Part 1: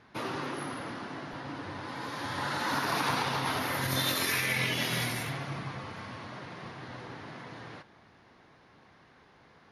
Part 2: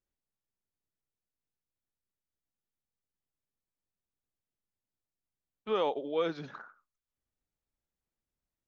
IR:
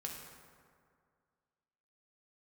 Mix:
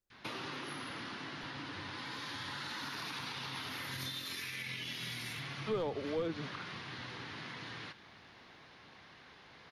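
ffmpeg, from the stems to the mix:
-filter_complex "[0:a]equalizer=frequency=3500:width_type=o:width=2:gain=10,acompressor=threshold=-40dB:ratio=2.5,adynamicequalizer=threshold=0.00112:dfrequency=640:dqfactor=1.6:tfrequency=640:tqfactor=1.6:attack=5:release=100:ratio=0.375:range=3:mode=cutabove:tftype=bell,adelay=100,volume=-1.5dB[link_01];[1:a]aeval=exprs='clip(val(0),-1,0.0531)':channel_layout=same,volume=0dB[link_02];[link_01][link_02]amix=inputs=2:normalize=0,acrossover=split=390[link_03][link_04];[link_04]acompressor=threshold=-39dB:ratio=6[link_05];[link_03][link_05]amix=inputs=2:normalize=0"

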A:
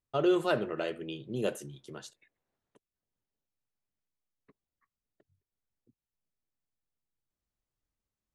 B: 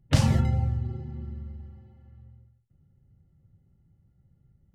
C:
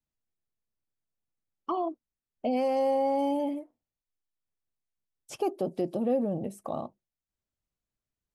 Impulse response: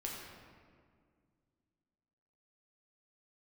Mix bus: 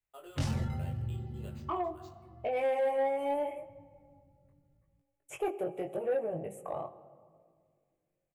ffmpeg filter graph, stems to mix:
-filter_complex "[0:a]highpass=570,acompressor=threshold=-33dB:ratio=6,acrusher=samples=4:mix=1:aa=0.000001,volume=-13.5dB,asplit=2[link_01][link_02];[link_02]volume=-6.5dB[link_03];[1:a]dynaudnorm=framelen=110:gausssize=13:maxgain=7dB,adelay=250,volume=-7dB,asplit=2[link_04][link_05];[link_05]volume=-20.5dB[link_06];[2:a]firequalizer=gain_entry='entry(140,0);entry(230,-18);entry(380,2);entry(1200,1);entry(2300,9);entry(4600,-22);entry(7100,1)':delay=0.05:min_phase=1,volume=-1.5dB,asplit=3[link_07][link_08][link_09];[link_08]volume=-11.5dB[link_10];[link_09]apad=whole_len=220306[link_11];[link_04][link_11]sidechaincompress=threshold=-39dB:ratio=8:attack=16:release=244[link_12];[3:a]atrim=start_sample=2205[link_13];[link_03][link_06][link_10]amix=inputs=3:normalize=0[link_14];[link_14][link_13]afir=irnorm=-1:irlink=0[link_15];[link_01][link_12][link_07][link_15]amix=inputs=4:normalize=0,flanger=delay=18:depth=4.4:speed=0.8,asoftclip=type=tanh:threshold=-23.5dB"

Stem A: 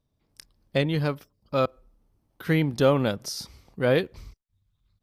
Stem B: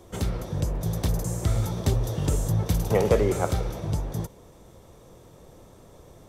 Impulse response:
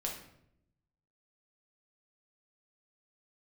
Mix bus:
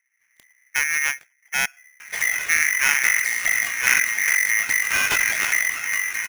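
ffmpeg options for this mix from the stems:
-filter_complex "[0:a]tiltshelf=frequency=1400:gain=8.5,dynaudnorm=framelen=120:gausssize=3:maxgain=4dB,volume=-6.5dB[link_01];[1:a]aphaser=in_gain=1:out_gain=1:delay=2.8:decay=0.47:speed=0.86:type=triangular,aeval=exprs='0.355*sin(PI/2*1.78*val(0)/0.355)':channel_layout=same,adelay=2000,volume=-4.5dB[link_02];[link_01][link_02]amix=inputs=2:normalize=0,aeval=exprs='clip(val(0),-1,0.0501)':channel_layout=same,aeval=exprs='val(0)*sgn(sin(2*PI*2000*n/s))':channel_layout=same"

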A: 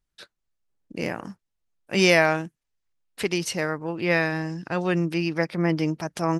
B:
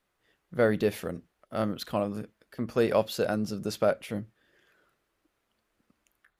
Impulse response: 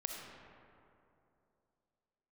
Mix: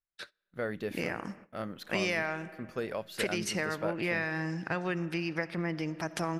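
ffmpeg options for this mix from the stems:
-filter_complex "[0:a]acompressor=threshold=-30dB:ratio=6,volume=-3dB,asplit=2[link_01][link_02];[link_02]volume=-10dB[link_03];[1:a]alimiter=limit=-15dB:level=0:latency=1:release=264,volume=-9.5dB[link_04];[2:a]atrim=start_sample=2205[link_05];[link_03][link_05]afir=irnorm=-1:irlink=0[link_06];[link_01][link_04][link_06]amix=inputs=3:normalize=0,agate=range=-20dB:threshold=-50dB:ratio=16:detection=peak,equalizer=frequency=1800:width_type=o:width=1.3:gain=5.5"

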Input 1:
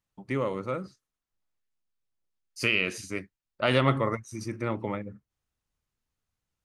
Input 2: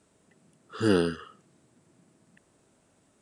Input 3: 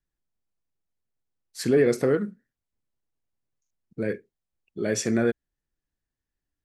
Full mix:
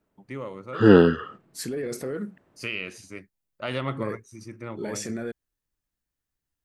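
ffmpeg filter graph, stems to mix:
ffmpeg -i stem1.wav -i stem2.wav -i stem3.wav -filter_complex "[0:a]volume=-6.5dB[link_01];[1:a]lowpass=2200,agate=range=-9dB:threshold=-54dB:ratio=16:detection=peak,dynaudnorm=framelen=470:gausssize=3:maxgain=11dB,volume=1dB[link_02];[2:a]highshelf=frequency=7700:gain=10,alimiter=limit=-21dB:level=0:latency=1:release=21,volume=-3dB[link_03];[link_01][link_02][link_03]amix=inputs=3:normalize=0" out.wav

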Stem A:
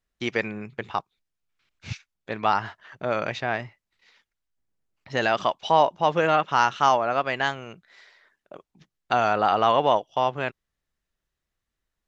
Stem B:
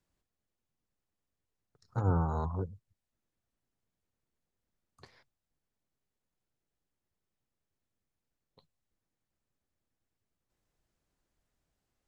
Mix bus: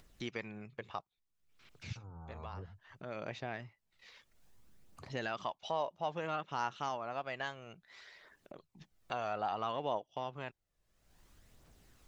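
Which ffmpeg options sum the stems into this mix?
ffmpeg -i stem1.wav -i stem2.wav -filter_complex "[0:a]equalizer=frequency=1600:width=1.5:gain=-2.5,acompressor=threshold=-30dB:ratio=1.5,volume=-11dB[link_01];[1:a]acompressor=threshold=-33dB:ratio=6,volume=-8.5dB,afade=type=in:start_time=2.14:duration=0.52:silence=0.334965,asplit=2[link_02][link_03];[link_03]apad=whole_len=532304[link_04];[link_01][link_04]sidechaincompress=threshold=-55dB:ratio=8:attack=21:release=679[link_05];[link_05][link_02]amix=inputs=2:normalize=0,acompressor=mode=upward:threshold=-45dB:ratio=2.5,aphaser=in_gain=1:out_gain=1:delay=1.9:decay=0.32:speed=0.6:type=triangular" out.wav

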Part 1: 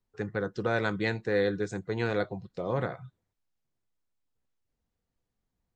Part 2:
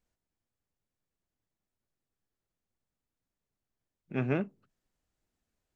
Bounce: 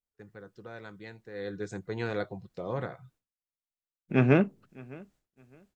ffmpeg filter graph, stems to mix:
ffmpeg -i stem1.wav -i stem2.wav -filter_complex "[0:a]volume=-10.5dB,afade=type=in:start_time=1.33:duration=0.37:silence=0.223872,afade=type=out:start_time=2.76:duration=0.62:silence=0.316228[link_01];[1:a]volume=1.5dB,asplit=2[link_02][link_03];[link_03]volume=-23.5dB,aecho=0:1:609|1218|1827|2436:1|0.24|0.0576|0.0138[link_04];[link_01][link_02][link_04]amix=inputs=3:normalize=0,acontrast=84,agate=range=-33dB:threshold=-59dB:ratio=3:detection=peak" out.wav

